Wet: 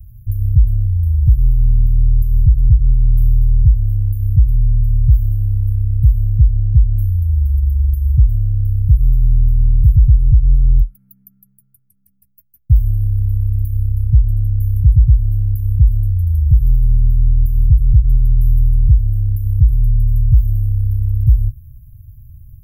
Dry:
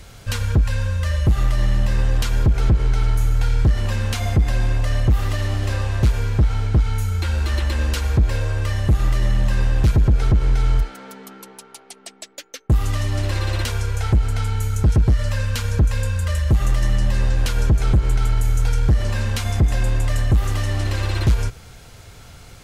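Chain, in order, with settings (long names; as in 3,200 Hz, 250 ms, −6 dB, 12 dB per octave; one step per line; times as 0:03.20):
inverse Chebyshev band-stop filter 320–7,500 Hz, stop band 50 dB
level +6.5 dB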